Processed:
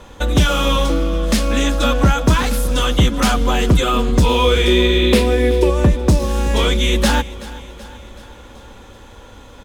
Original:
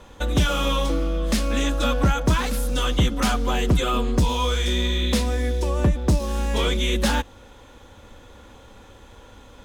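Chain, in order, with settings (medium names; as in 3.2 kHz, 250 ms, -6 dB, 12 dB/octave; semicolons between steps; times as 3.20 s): 4.24–5.70 s: fifteen-band graphic EQ 400 Hz +12 dB, 2.5 kHz +6 dB, 6.3 kHz -6 dB; feedback delay 379 ms, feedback 57%, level -18 dB; trim +6 dB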